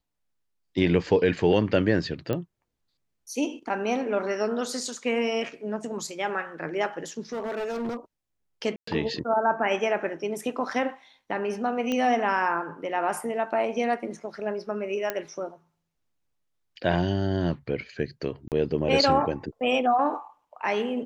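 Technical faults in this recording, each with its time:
2.33 s: pop -16 dBFS
7.32–7.97 s: clipped -27 dBFS
8.76–8.87 s: dropout 114 ms
11.92 s: pop -15 dBFS
15.10 s: pop -12 dBFS
18.48–18.52 s: dropout 38 ms

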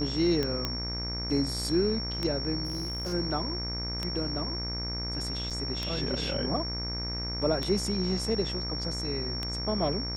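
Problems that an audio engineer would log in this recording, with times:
buzz 60 Hz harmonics 40 -36 dBFS
tick 33 1/3 rpm -16 dBFS
whine 5.5 kHz -34 dBFS
0.65 s: pop -14 dBFS
2.65–3.14 s: clipped -29.5 dBFS
5.50–5.51 s: dropout 6.6 ms

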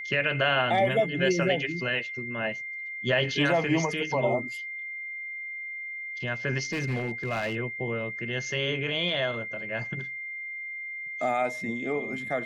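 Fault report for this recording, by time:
whine 2.1 kHz -34 dBFS
6.72–7.56 s: clipped -25 dBFS

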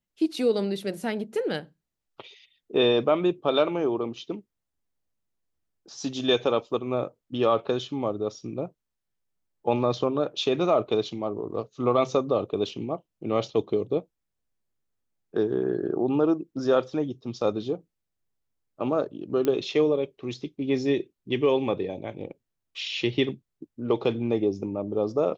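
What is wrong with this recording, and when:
19.45 s: pop -14 dBFS

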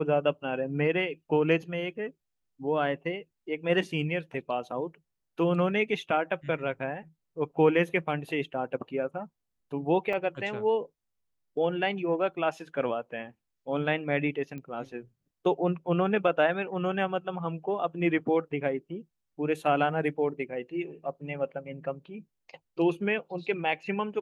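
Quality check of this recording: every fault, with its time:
10.13 s: dropout 3.1 ms
14.58 s: pop -29 dBFS

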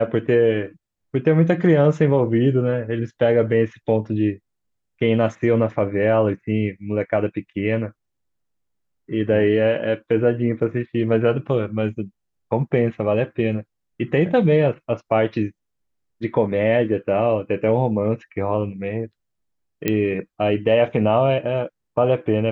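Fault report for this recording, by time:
19.88 s: pop -6 dBFS

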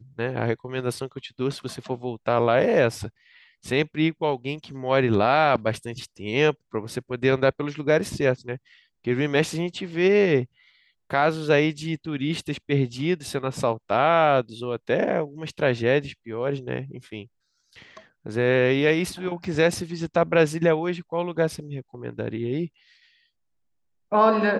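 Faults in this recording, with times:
19.44 s: dropout 2.8 ms

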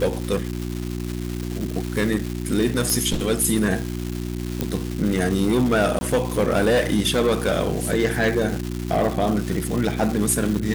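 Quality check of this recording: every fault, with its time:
crackle 540 per s -26 dBFS
hum 60 Hz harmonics 6 -28 dBFS
2.90 s: pop
4.61 s: pop -9 dBFS
5.99–6.01 s: dropout 20 ms

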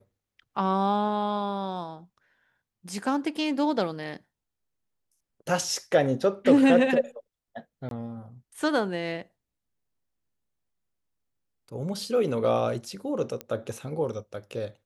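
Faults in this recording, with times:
7.89–7.91 s: dropout 22 ms
13.41 s: pop -19 dBFS

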